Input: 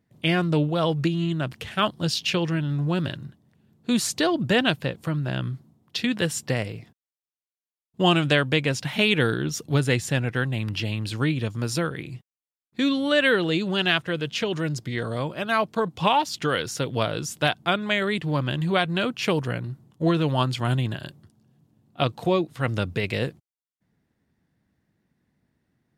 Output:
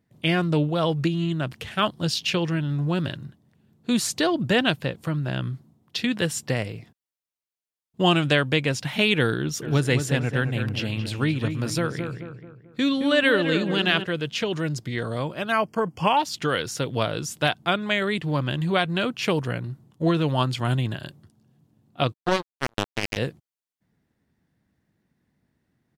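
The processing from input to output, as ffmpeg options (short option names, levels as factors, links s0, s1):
-filter_complex "[0:a]asplit=3[s0][s1][s2];[s0]afade=t=out:st=9.61:d=0.02[s3];[s1]asplit=2[s4][s5];[s5]adelay=218,lowpass=f=2000:p=1,volume=0.447,asplit=2[s6][s7];[s7]adelay=218,lowpass=f=2000:p=1,volume=0.45,asplit=2[s8][s9];[s9]adelay=218,lowpass=f=2000:p=1,volume=0.45,asplit=2[s10][s11];[s11]adelay=218,lowpass=f=2000:p=1,volume=0.45,asplit=2[s12][s13];[s13]adelay=218,lowpass=f=2000:p=1,volume=0.45[s14];[s4][s6][s8][s10][s12][s14]amix=inputs=6:normalize=0,afade=t=in:st=9.61:d=0.02,afade=t=out:st=14.04:d=0.02[s15];[s2]afade=t=in:st=14.04:d=0.02[s16];[s3][s15][s16]amix=inputs=3:normalize=0,asettb=1/sr,asplit=3[s17][s18][s19];[s17]atrim=end=15.524[s20];[s18]atrim=start=15.52:end=16.17,asetpts=PTS-STARTPTS,afade=t=in:d=0.004:c=qsin,afade=t=out:st=0.646:d=0.004:c=qsin,asuperstop=centerf=3800:order=8:qfactor=3.1[s21];[s19]atrim=start=16.166[s22];[s20][s21]acrossfade=d=0.004:c1=hsin:c2=qsin[s23];[s23][s22]acrossfade=d=0.004:c1=qsin:c2=hsin,asplit=3[s24][s25][s26];[s24]afade=t=out:st=22.12:d=0.02[s27];[s25]acrusher=bits=2:mix=0:aa=0.5,afade=t=in:st=22.12:d=0.02,afade=t=out:st=23.16:d=0.02[s28];[s26]afade=t=in:st=23.16:d=0.02[s29];[s27][s28][s29]amix=inputs=3:normalize=0"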